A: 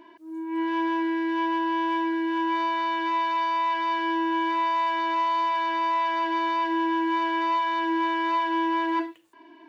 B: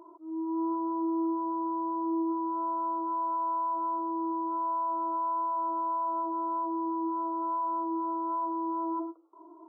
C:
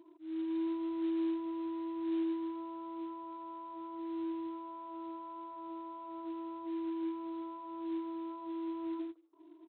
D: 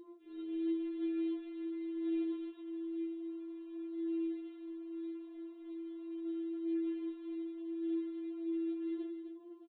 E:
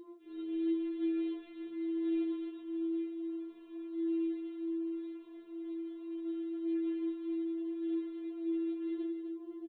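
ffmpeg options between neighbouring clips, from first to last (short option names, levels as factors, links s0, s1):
-af "afftfilt=real='re*between(b*sr/4096,300,1400)':imag='im*between(b*sr/4096,300,1400)':win_size=4096:overlap=0.75,alimiter=level_in=1.26:limit=0.0631:level=0:latency=1:release=111,volume=0.794"
-af "equalizer=f=250:t=o:w=1:g=10,equalizer=f=500:t=o:w=1:g=-7,equalizer=f=1000:t=o:w=1:g=-10,aresample=8000,acrusher=bits=6:mode=log:mix=0:aa=0.000001,aresample=44100,volume=0.501"
-af "aecho=1:1:257:0.376,afftfilt=real='re*4*eq(mod(b,16),0)':imag='im*4*eq(mod(b,16),0)':win_size=2048:overlap=0.75"
-filter_complex "[0:a]asplit=2[s0][s1];[s1]adelay=637,lowpass=f=920:p=1,volume=0.398,asplit=2[s2][s3];[s3]adelay=637,lowpass=f=920:p=1,volume=0.49,asplit=2[s4][s5];[s5]adelay=637,lowpass=f=920:p=1,volume=0.49,asplit=2[s6][s7];[s7]adelay=637,lowpass=f=920:p=1,volume=0.49,asplit=2[s8][s9];[s9]adelay=637,lowpass=f=920:p=1,volume=0.49,asplit=2[s10][s11];[s11]adelay=637,lowpass=f=920:p=1,volume=0.49[s12];[s0][s2][s4][s6][s8][s10][s12]amix=inputs=7:normalize=0,volume=1.33"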